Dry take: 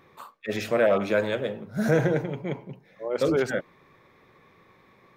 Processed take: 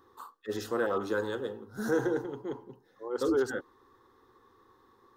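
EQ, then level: fixed phaser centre 620 Hz, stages 6; -2.0 dB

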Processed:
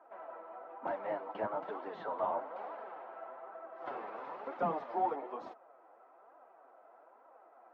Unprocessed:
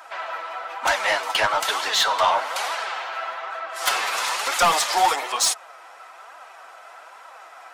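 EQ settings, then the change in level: ladder band-pass 300 Hz, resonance 20%; air absorption 130 m; low shelf 410 Hz +4 dB; +5.0 dB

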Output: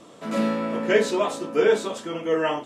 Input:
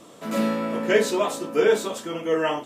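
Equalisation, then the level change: LPF 12000 Hz 24 dB/oct; high shelf 9300 Hz -10 dB; 0.0 dB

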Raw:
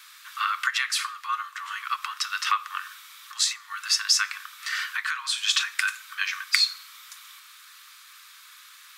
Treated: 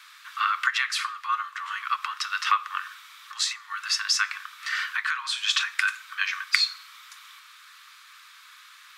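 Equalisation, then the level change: LPF 3200 Hz 6 dB/oct; +2.5 dB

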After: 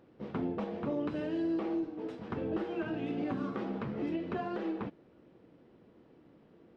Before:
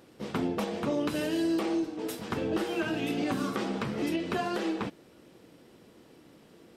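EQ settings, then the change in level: tape spacing loss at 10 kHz 35 dB; -3.0 dB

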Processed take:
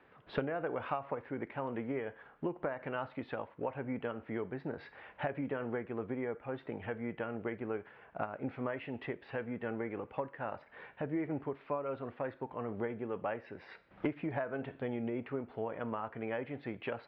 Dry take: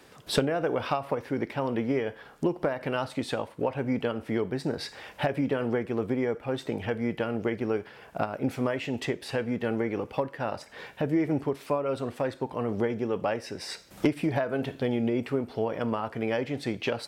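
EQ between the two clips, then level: LPF 2100 Hz 12 dB/oct; air absorption 370 m; tilt shelf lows -5.5 dB; -5.0 dB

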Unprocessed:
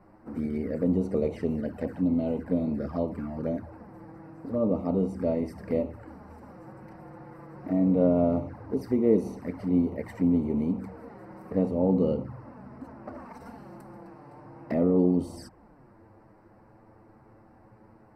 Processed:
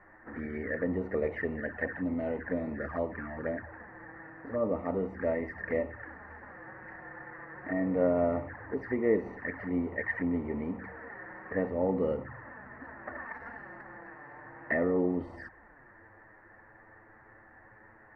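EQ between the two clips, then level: synth low-pass 1800 Hz, resonance Q 14; bell 180 Hz -9 dB 1.6 oct; -1.5 dB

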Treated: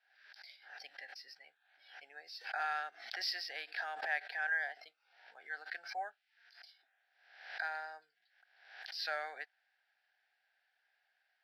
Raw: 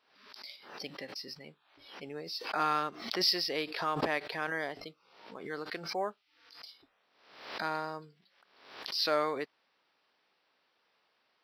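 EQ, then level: double band-pass 1100 Hz, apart 1.1 oct; differentiator; +17.5 dB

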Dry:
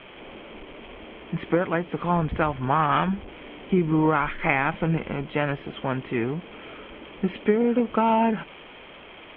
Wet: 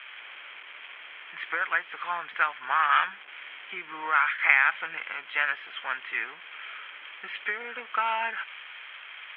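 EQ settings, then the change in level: resonant high-pass 1600 Hz, resonance Q 2.2; 0.0 dB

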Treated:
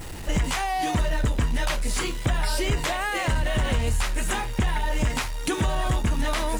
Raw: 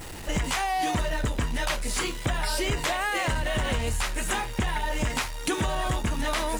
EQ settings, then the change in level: low shelf 210 Hz +5.5 dB; 0.0 dB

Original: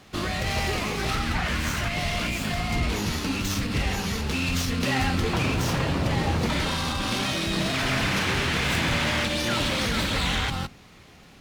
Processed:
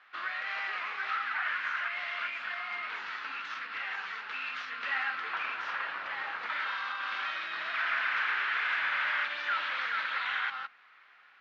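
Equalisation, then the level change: ladder band-pass 1700 Hz, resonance 50%; air absorption 190 m; +8.0 dB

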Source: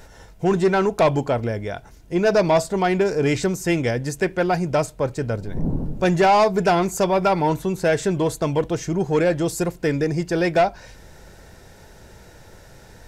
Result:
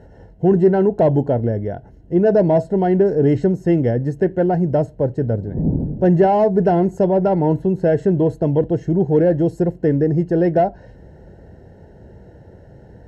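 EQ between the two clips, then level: running mean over 37 samples; HPF 58 Hz; +6.5 dB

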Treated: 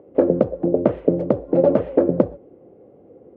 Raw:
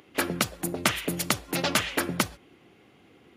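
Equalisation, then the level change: dynamic EQ 300 Hz, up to +5 dB, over -40 dBFS, Q 0.85; synth low-pass 530 Hz, resonance Q 4.9; +4.5 dB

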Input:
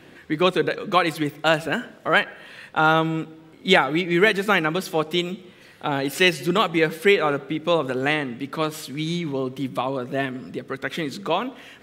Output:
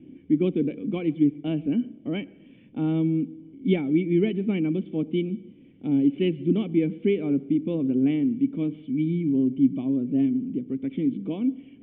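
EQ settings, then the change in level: vocal tract filter i; tilt shelf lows +8 dB, about 1200 Hz; +2.5 dB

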